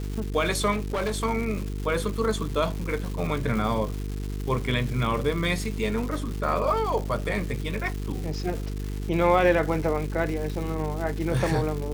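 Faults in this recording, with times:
buzz 50 Hz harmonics 9 -31 dBFS
crackle 410 per s -32 dBFS
0.71–1.25 s: clipped -23 dBFS

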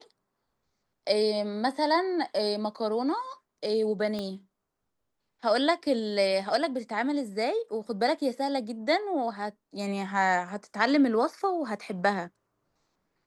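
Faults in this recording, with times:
4.19 s: pop -21 dBFS

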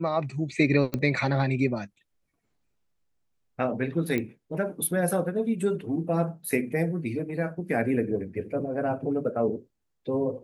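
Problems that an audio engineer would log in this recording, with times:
0.94 s: pop -15 dBFS
4.18 s: pop -16 dBFS

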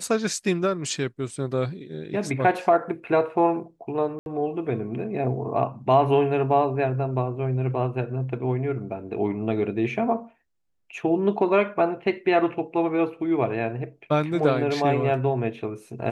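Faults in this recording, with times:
4.19–4.26 s: dropout 71 ms

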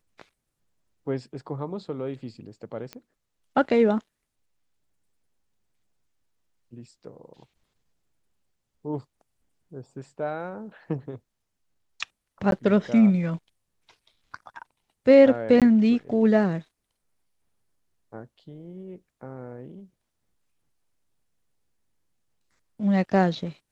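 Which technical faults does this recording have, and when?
2.93 s: pop -22 dBFS
12.51–12.52 s: dropout 12 ms
15.60–15.62 s: dropout 17 ms

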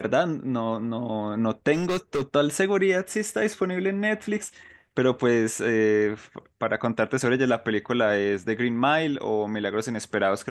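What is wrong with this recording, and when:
1.73–2.22 s: clipped -21.5 dBFS

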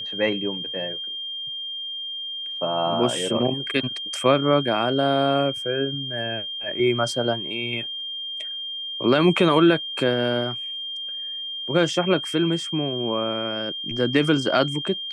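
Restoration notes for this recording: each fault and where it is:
whine 3.2 kHz -29 dBFS

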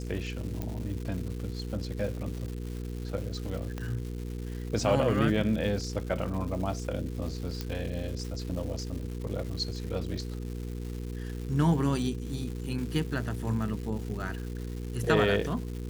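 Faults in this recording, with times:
crackle 370 per s -38 dBFS
hum 60 Hz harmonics 8 -36 dBFS
0.62 s: pop -20 dBFS
3.78 s: pop -22 dBFS
7.61 s: pop -18 dBFS

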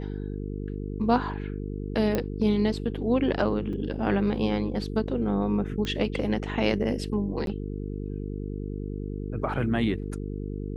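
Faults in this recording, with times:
buzz 50 Hz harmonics 9 -33 dBFS
2.15 s: pop -13 dBFS
3.73 s: dropout 4.5 ms
5.85 s: pop -18 dBFS
7.46–7.47 s: dropout 12 ms

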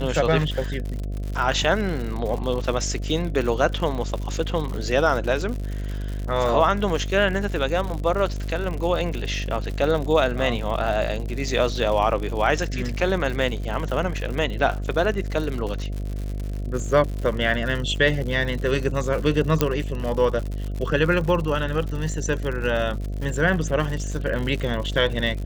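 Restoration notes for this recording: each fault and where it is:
buzz 50 Hz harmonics 14 -28 dBFS
crackle 110 per s -29 dBFS
19.61 s: pop -4 dBFS

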